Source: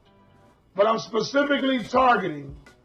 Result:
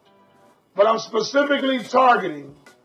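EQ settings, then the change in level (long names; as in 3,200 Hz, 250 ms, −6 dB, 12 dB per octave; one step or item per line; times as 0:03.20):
high-pass filter 180 Hz 12 dB per octave
parametric band 690 Hz +4 dB 2.3 octaves
high-shelf EQ 5,600 Hz +8.5 dB
0.0 dB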